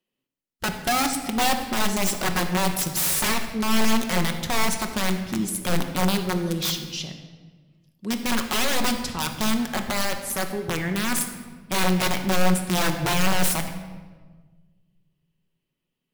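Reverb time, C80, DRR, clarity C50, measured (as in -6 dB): 1.4 s, 9.0 dB, 4.5 dB, 8.0 dB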